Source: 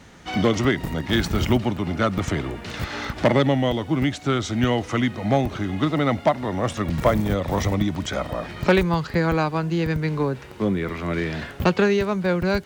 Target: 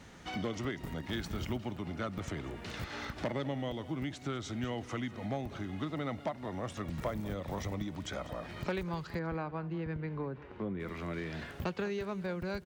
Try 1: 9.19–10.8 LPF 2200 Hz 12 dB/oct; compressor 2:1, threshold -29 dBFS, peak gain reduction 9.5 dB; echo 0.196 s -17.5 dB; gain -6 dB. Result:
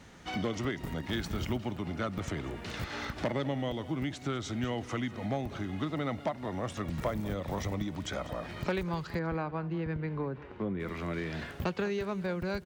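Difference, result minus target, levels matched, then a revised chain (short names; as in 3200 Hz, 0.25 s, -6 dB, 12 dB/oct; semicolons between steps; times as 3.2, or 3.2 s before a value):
compressor: peak gain reduction -3 dB
9.19–10.8 LPF 2200 Hz 12 dB/oct; compressor 2:1, threshold -35.5 dBFS, peak gain reduction 13 dB; echo 0.196 s -17.5 dB; gain -6 dB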